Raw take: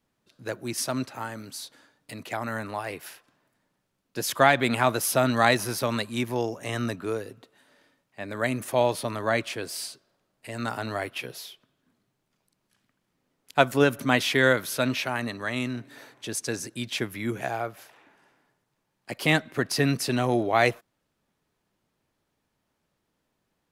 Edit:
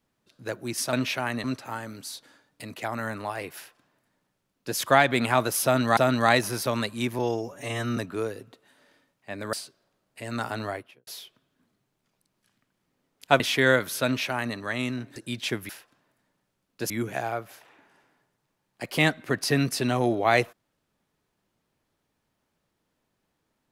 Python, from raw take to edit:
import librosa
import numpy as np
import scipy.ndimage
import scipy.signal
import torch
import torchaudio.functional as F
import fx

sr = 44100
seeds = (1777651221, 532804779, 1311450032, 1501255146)

y = fx.studio_fade_out(x, sr, start_s=10.86, length_s=0.48)
y = fx.edit(y, sr, fx.duplicate(start_s=3.05, length_s=1.21, to_s=17.18),
    fx.repeat(start_s=5.13, length_s=0.33, count=2),
    fx.stretch_span(start_s=6.35, length_s=0.52, factor=1.5),
    fx.cut(start_s=8.43, length_s=1.37),
    fx.cut(start_s=13.67, length_s=0.5),
    fx.duplicate(start_s=14.82, length_s=0.51, to_s=0.93),
    fx.cut(start_s=15.93, length_s=0.72), tone=tone)